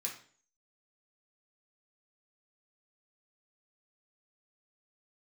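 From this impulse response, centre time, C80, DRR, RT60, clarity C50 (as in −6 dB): 24 ms, 12.0 dB, −3.0 dB, 0.45 s, 7.0 dB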